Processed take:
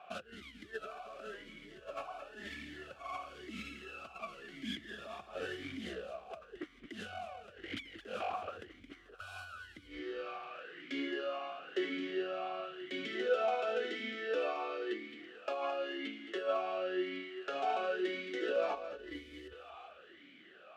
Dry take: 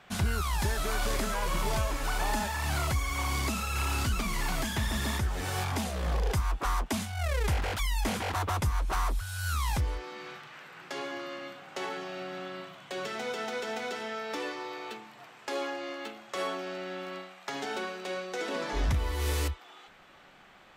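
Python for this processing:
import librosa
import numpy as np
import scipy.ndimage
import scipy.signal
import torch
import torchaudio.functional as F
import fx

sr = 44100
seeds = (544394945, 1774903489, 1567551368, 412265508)

y = fx.over_compress(x, sr, threshold_db=-34.0, ratio=-0.5)
y = fx.echo_feedback(y, sr, ms=219, feedback_pct=37, wet_db=-10.0)
y = fx.vowel_sweep(y, sr, vowels='a-i', hz=0.96)
y = y * librosa.db_to_amplitude(6.5)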